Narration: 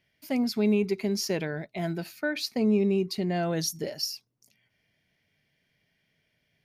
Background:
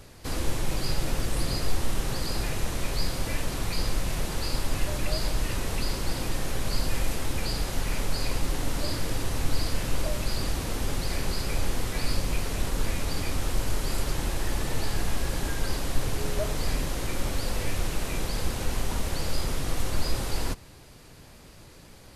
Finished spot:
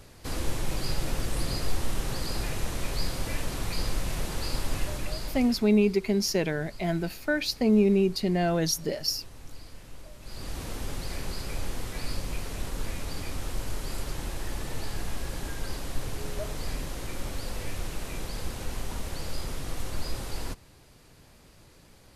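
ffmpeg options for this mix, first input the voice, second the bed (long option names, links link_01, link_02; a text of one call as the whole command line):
ffmpeg -i stem1.wav -i stem2.wav -filter_complex "[0:a]adelay=5050,volume=2.5dB[link_01];[1:a]volume=11dB,afade=type=out:start_time=4.74:duration=0.96:silence=0.149624,afade=type=in:start_time=10.2:duration=0.42:silence=0.223872[link_02];[link_01][link_02]amix=inputs=2:normalize=0" out.wav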